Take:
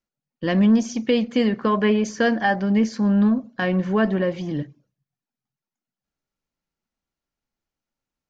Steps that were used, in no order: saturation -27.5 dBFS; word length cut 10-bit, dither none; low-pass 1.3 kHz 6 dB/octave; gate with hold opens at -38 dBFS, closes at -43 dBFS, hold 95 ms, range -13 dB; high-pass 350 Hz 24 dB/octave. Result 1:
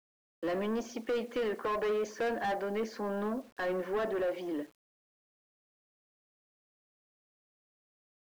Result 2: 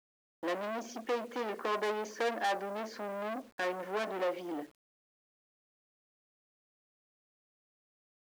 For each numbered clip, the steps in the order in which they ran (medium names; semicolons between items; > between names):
gate with hold > high-pass > saturation > low-pass > word length cut; low-pass > saturation > high-pass > gate with hold > word length cut